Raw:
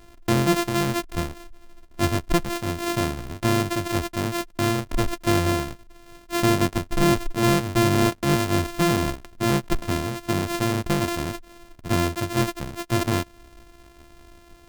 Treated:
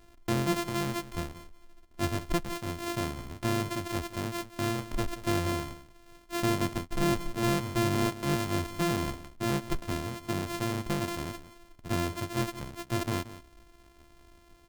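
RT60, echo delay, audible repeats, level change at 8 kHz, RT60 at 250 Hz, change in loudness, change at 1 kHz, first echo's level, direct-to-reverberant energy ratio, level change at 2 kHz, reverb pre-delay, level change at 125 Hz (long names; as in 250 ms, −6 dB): no reverb audible, 178 ms, 1, −8.0 dB, no reverb audible, −8.0 dB, −8.0 dB, −15.0 dB, no reverb audible, −8.0 dB, no reverb audible, −8.0 dB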